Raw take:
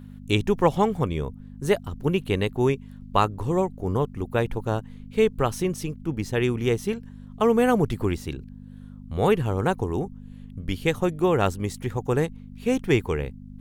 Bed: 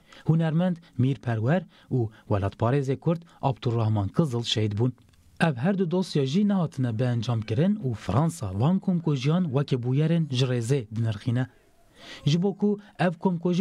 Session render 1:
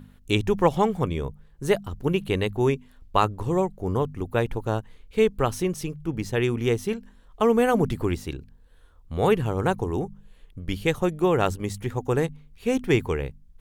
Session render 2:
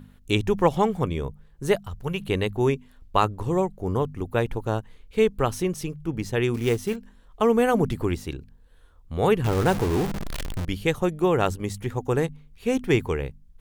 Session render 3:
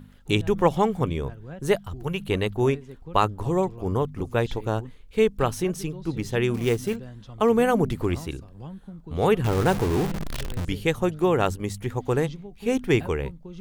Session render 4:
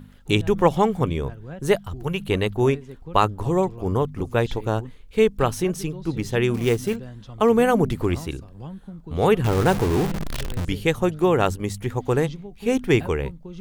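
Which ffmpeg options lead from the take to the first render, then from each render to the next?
-af "bandreject=f=50:t=h:w=4,bandreject=f=100:t=h:w=4,bandreject=f=150:t=h:w=4,bandreject=f=200:t=h:w=4,bandreject=f=250:t=h:w=4"
-filter_complex "[0:a]asettb=1/sr,asplit=3[s0][s1][s2];[s0]atrim=end=1.764[s3];[s1]atrim=start=1.76:end=2.2,asetpts=PTS-STARTPTS,afade=t=in:d=0.004:c=qsin,afade=t=out:st=0.436:d=0.004:c=qsin,equalizer=f=300:w=1.5:g=-14[s4];[s2]atrim=start=2.196[s5];[s3][s4]acrossfade=d=0.004:c1=hsin:c2=qsin[s6];[s6][s5]acrossfade=d=0.004:c1=qsin:c2=hsin,asettb=1/sr,asplit=3[s7][s8][s9];[s7]atrim=end=6.544[s10];[s8]atrim=start=6.54:end=6.96,asetpts=PTS-STARTPTS,afade=t=in:d=0.004:c=qsin,afade=t=out:st=0.416:d=0.004:c=qsin,acrusher=bits=5:mode=log:mix=0:aa=0.000001[s11];[s9]atrim=start=6.956[s12];[s10][s11]acrossfade=d=0.004:c1=hsin:c2=qsin[s13];[s13][s12]acrossfade=d=0.004:c1=qsin:c2=hsin,asettb=1/sr,asplit=3[s14][s15][s16];[s14]atrim=end=9.444[s17];[s15]atrim=start=9.44:end=10.65,asetpts=PTS-STARTPTS,afade=t=in:d=0.004:c=qsin,afade=t=out:st=1.206:d=0.004:c=qsin,aeval=exprs='val(0)+0.5*0.0631*sgn(val(0))':c=same[s18];[s16]atrim=start=10.646[s19];[s17][s18]acrossfade=d=0.004:c1=hsin:c2=qsin[s20];[s20][s19]acrossfade=d=0.004:c1=qsin:c2=hsin"
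-filter_complex "[1:a]volume=0.15[s0];[0:a][s0]amix=inputs=2:normalize=0"
-af "volume=1.33"

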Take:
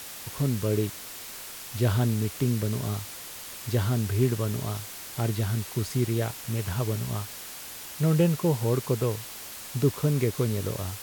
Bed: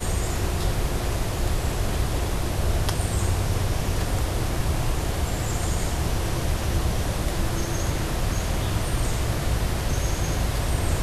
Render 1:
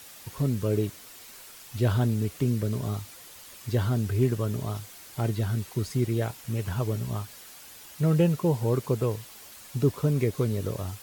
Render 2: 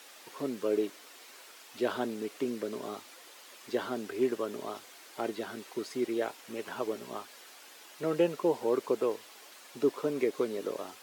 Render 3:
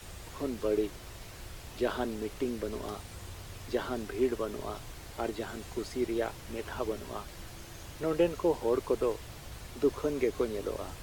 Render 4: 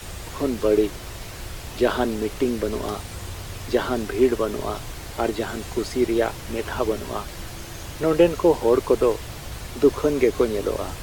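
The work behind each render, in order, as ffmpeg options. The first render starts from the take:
-af "afftdn=nr=8:nf=-41"
-af "highpass=f=290:w=0.5412,highpass=f=290:w=1.3066,highshelf=f=7000:g=-12"
-filter_complex "[1:a]volume=0.0794[s0];[0:a][s0]amix=inputs=2:normalize=0"
-af "volume=3.35"

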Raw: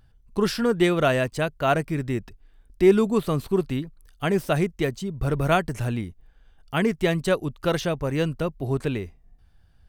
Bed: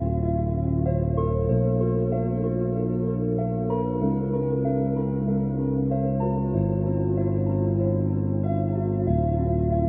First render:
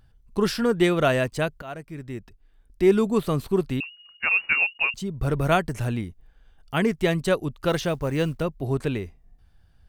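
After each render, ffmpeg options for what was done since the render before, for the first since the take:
-filter_complex "[0:a]asettb=1/sr,asplit=3[s0][s1][s2];[s0]atrim=end=3.804[s3];[s1]atrim=start=3.8:end=4.94,asetpts=PTS-STARTPTS,afade=t=in:d=0.004:c=qsin,afade=t=out:st=1.136:d=0.004:c=qsin,lowpass=f=2500:t=q:w=0.5098,lowpass=f=2500:t=q:w=0.6013,lowpass=f=2500:t=q:w=0.9,lowpass=f=2500:t=q:w=2.563,afreqshift=-2900[s4];[s2]atrim=start=4.936[s5];[s3][s4]acrossfade=d=0.004:c1=hsin:c2=qsin[s6];[s6][s5]acrossfade=d=0.004:c1=qsin:c2=hsin,asettb=1/sr,asplit=3[s7][s8][s9];[s7]atrim=end=7.694[s10];[s8]atrim=start=7.69:end=8.43,asetpts=PTS-STARTPTS,afade=t=in:d=0.004:c=qsin,afade=t=out:st=0.736:d=0.004:c=qsin,acrusher=bits=8:mode=log:mix=0:aa=0.000001[s11];[s9]atrim=start=8.426[s12];[s10][s11]acrossfade=d=0.004:c1=hsin:c2=qsin[s13];[s13][s12]acrossfade=d=0.004:c1=qsin:c2=hsin,asplit=2[s14][s15];[s14]atrim=end=1.62,asetpts=PTS-STARTPTS,afade=t=out:st=1.616:d=0.004:c=hsin:silence=0.125893[s16];[s15]atrim=start=1.62,asetpts=PTS-STARTPTS,afade=t=in:d=1.57:silence=0.125893[s17];[s16][s17]concat=n=2:v=0:a=1"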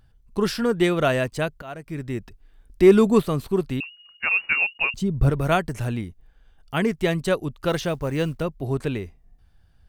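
-filter_complex "[0:a]asettb=1/sr,asplit=3[s0][s1][s2];[s0]atrim=end=1.864[s3];[s1]atrim=start=1.86:end=3.22,asetpts=PTS-STARTPTS,afade=t=in:d=0.004:c=qsin,afade=t=out:st=1.356:d=0.004:c=qsin,acontrast=36[s4];[s2]atrim=start=3.216[s5];[s3][s4]acrossfade=d=0.004:c1=hsin:c2=qsin[s6];[s6][s5]acrossfade=d=0.004:c1=qsin:c2=hsin,asettb=1/sr,asplit=3[s7][s8][s9];[s7]atrim=end=4.644[s10];[s8]atrim=start=4.64:end=5.3,asetpts=PTS-STARTPTS,afade=t=in:d=0.004:c=qsin,afade=t=out:st=0.656:d=0.004:c=qsin,lowshelf=f=420:g=8.5[s11];[s9]atrim=start=5.296[s12];[s10][s11]acrossfade=d=0.004:c1=hsin:c2=qsin[s13];[s13][s12]acrossfade=d=0.004:c1=qsin:c2=hsin"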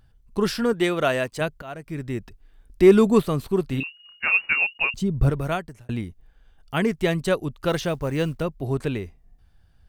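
-filter_complex "[0:a]asettb=1/sr,asplit=3[s0][s1][s2];[s0]atrim=end=0.734[s3];[s1]atrim=start=0.73:end=1.41,asetpts=PTS-STARTPTS,afade=t=in:d=0.004:c=qsin,afade=t=out:st=0.676:d=0.004:c=qsin,lowshelf=f=190:g=-9.5[s4];[s2]atrim=start=1.406[s5];[s3][s4]acrossfade=d=0.004:c1=hsin:c2=qsin[s6];[s6][s5]acrossfade=d=0.004:c1=qsin:c2=hsin,asettb=1/sr,asplit=3[s7][s8][s9];[s7]atrim=end=3.684[s10];[s8]atrim=start=3.68:end=4.37,asetpts=PTS-STARTPTS,afade=t=in:d=0.004:c=qsin,afade=t=out:st=0.686:d=0.004:c=qsin,asplit=2[s11][s12];[s12]adelay=30,volume=0.447[s13];[s11][s13]amix=inputs=2:normalize=0,atrim=end_sample=30429[s14];[s9]atrim=start=4.366[s15];[s10][s14]acrossfade=d=0.004:c1=hsin:c2=qsin[s16];[s16][s15]acrossfade=d=0.004:c1=qsin:c2=hsin,asplit=2[s17][s18];[s17]atrim=end=5.89,asetpts=PTS-STARTPTS,afade=t=out:st=5.21:d=0.68[s19];[s18]atrim=start=5.89,asetpts=PTS-STARTPTS,afade=t=in:d=0.004:c=hsin[s20];[s19][s20]concat=n=2:v=0:a=1"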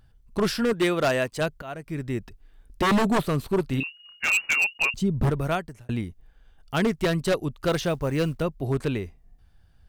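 -af "aeval=exprs='0.168*(abs(mod(val(0)/0.168+3,4)-2)-1)':c=same"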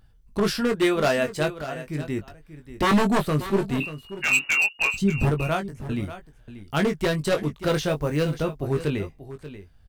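-filter_complex "[0:a]asplit=2[s0][s1];[s1]adelay=20,volume=0.473[s2];[s0][s2]amix=inputs=2:normalize=0,aecho=1:1:586:0.211"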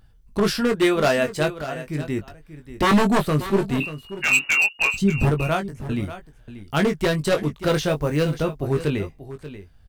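-af "volume=1.33"

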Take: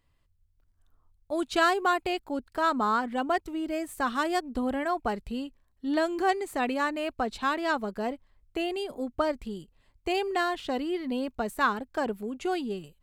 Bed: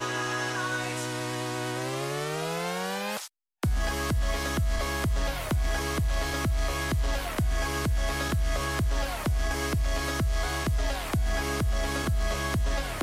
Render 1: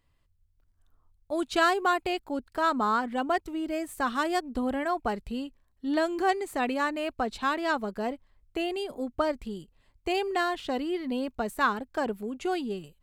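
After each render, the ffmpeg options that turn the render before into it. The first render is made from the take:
-af anull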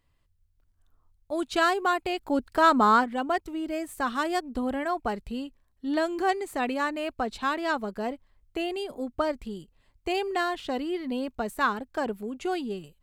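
-filter_complex "[0:a]asplit=3[s0][s1][s2];[s0]afade=t=out:st=2.2:d=0.02[s3];[s1]acontrast=60,afade=t=in:st=2.2:d=0.02,afade=t=out:st=3.03:d=0.02[s4];[s2]afade=t=in:st=3.03:d=0.02[s5];[s3][s4][s5]amix=inputs=3:normalize=0"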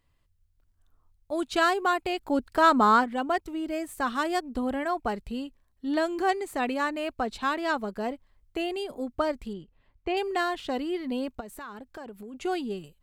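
-filter_complex "[0:a]asettb=1/sr,asplit=3[s0][s1][s2];[s0]atrim=end=9.534[s3];[s1]atrim=start=9.53:end=10.17,asetpts=PTS-STARTPTS,afade=t=in:d=0.004:c=qsin,afade=t=out:st=0.636:d=0.004:c=qsin,lowpass=2900[s4];[s2]atrim=start=10.166[s5];[s3][s4]acrossfade=d=0.004:c1=hsin:c2=qsin[s6];[s6][s5]acrossfade=d=0.004:c1=qsin:c2=hsin,asplit=3[s7][s8][s9];[s7]afade=t=out:st=11.39:d=0.02[s10];[s8]acompressor=threshold=0.0112:ratio=5:attack=3.2:release=140:knee=1:detection=peak,afade=t=in:st=11.39:d=0.02,afade=t=out:st=12.33:d=0.02[s11];[s9]afade=t=in:st=12.33:d=0.02[s12];[s10][s11][s12]amix=inputs=3:normalize=0"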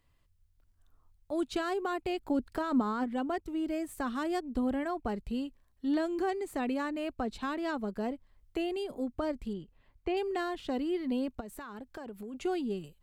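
-filter_complex "[0:a]alimiter=limit=0.119:level=0:latency=1:release=23,acrossover=split=420[s0][s1];[s1]acompressor=threshold=0.00316:ratio=1.5[s2];[s0][s2]amix=inputs=2:normalize=0"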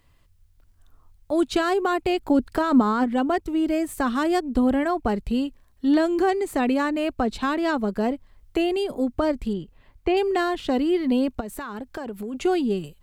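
-af "volume=3.35"

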